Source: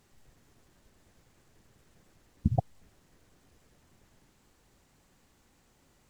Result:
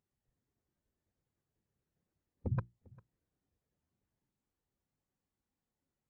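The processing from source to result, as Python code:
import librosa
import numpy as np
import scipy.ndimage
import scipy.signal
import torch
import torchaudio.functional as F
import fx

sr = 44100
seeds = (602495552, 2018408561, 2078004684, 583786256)

y = fx.highpass(x, sr, hz=51.0, slope=6)
y = 10.0 ** (-22.0 / 20.0) * (np.abs((y / 10.0 ** (-22.0 / 20.0) + 3.0) % 4.0 - 2.0) - 1.0)
y = fx.hum_notches(y, sr, base_hz=60, count=6)
y = y + 10.0 ** (-16.5 / 20.0) * np.pad(y, (int(399 * sr / 1000.0), 0))[:len(y)]
y = fx.spectral_expand(y, sr, expansion=1.5)
y = y * 10.0 ** (-3.5 / 20.0)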